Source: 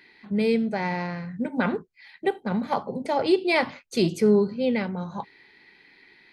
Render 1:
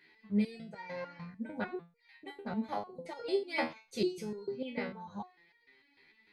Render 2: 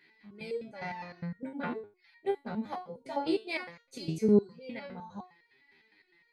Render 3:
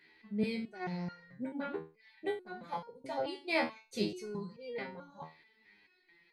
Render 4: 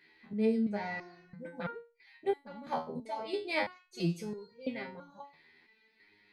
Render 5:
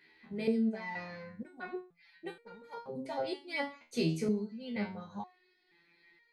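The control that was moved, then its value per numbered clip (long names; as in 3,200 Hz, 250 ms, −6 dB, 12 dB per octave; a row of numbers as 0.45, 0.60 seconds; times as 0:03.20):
step-sequenced resonator, speed: 6.7, 9.8, 4.6, 3, 2.1 Hertz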